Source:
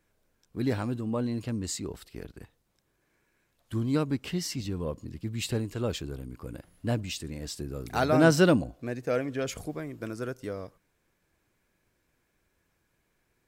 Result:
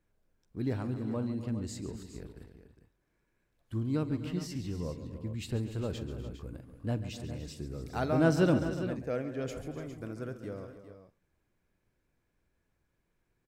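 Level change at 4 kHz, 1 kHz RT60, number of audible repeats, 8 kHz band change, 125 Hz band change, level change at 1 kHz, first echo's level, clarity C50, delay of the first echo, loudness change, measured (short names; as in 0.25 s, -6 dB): -9.5 dB, none, 5, -11.0 dB, -2.5 dB, -6.5 dB, -18.0 dB, none, 46 ms, -4.5 dB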